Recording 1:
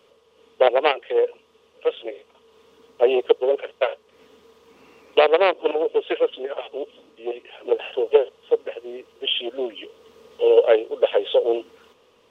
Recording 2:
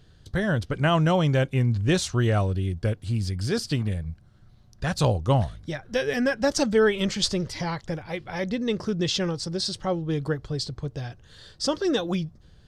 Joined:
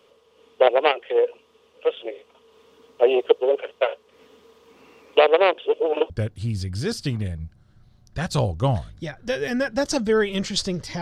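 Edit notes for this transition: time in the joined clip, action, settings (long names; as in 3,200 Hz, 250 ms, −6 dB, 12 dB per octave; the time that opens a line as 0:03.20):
recording 1
0:05.58–0:06.10: reverse
0:06.10: continue with recording 2 from 0:02.76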